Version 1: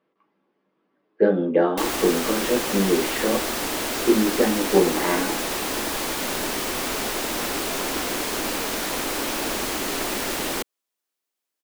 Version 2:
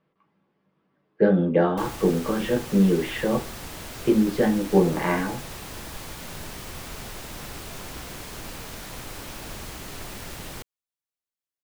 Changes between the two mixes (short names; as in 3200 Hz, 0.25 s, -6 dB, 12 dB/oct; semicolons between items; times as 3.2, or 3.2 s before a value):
background -12.0 dB; master: add resonant low shelf 190 Hz +12.5 dB, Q 1.5